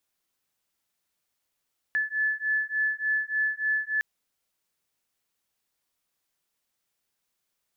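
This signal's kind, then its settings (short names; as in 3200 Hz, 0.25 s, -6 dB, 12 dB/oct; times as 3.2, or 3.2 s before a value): beating tones 1730 Hz, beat 3.4 Hz, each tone -27.5 dBFS 2.06 s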